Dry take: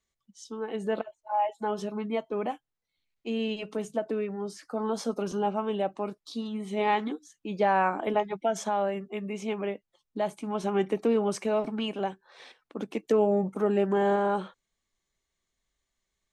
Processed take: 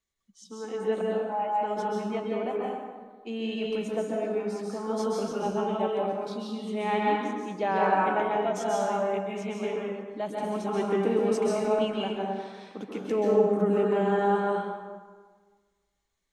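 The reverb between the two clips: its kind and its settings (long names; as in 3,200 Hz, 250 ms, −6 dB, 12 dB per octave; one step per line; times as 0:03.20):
dense smooth reverb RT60 1.5 s, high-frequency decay 0.6×, pre-delay 120 ms, DRR −3.5 dB
level −4 dB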